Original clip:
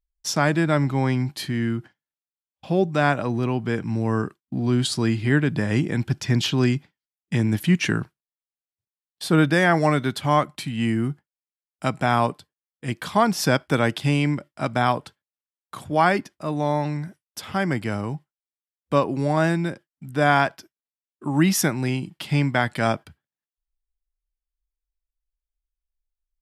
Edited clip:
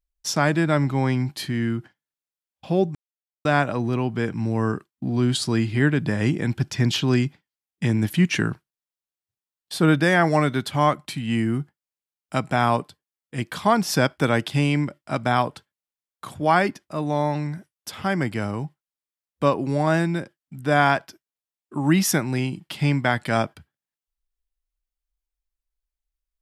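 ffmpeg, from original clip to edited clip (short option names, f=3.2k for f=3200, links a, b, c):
-filter_complex "[0:a]asplit=2[a][b];[a]atrim=end=2.95,asetpts=PTS-STARTPTS,afade=t=out:st=2.946:d=0.004:c=hsin,apad=pad_dur=0.5[c];[b]atrim=start=2.95,asetpts=PTS-STARTPTS,afade=t=in:d=0.004:c=hsin[d];[c][d]concat=n=2:v=0:a=1"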